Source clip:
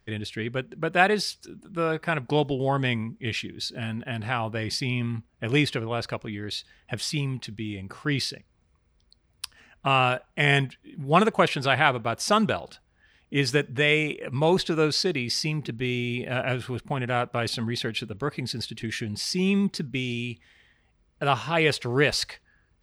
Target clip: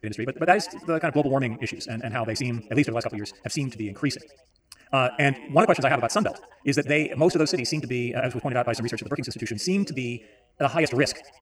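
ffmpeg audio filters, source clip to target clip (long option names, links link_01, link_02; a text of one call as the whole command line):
ffmpeg -i in.wav -filter_complex "[0:a]atempo=2,superequalizer=6b=2:8b=2:9b=0.562:13b=0.251:15b=1.78,asplit=5[link_01][link_02][link_03][link_04][link_05];[link_02]adelay=87,afreqshift=91,volume=-21.5dB[link_06];[link_03]adelay=174,afreqshift=182,volume=-26.5dB[link_07];[link_04]adelay=261,afreqshift=273,volume=-31.6dB[link_08];[link_05]adelay=348,afreqshift=364,volume=-36.6dB[link_09];[link_01][link_06][link_07][link_08][link_09]amix=inputs=5:normalize=0" out.wav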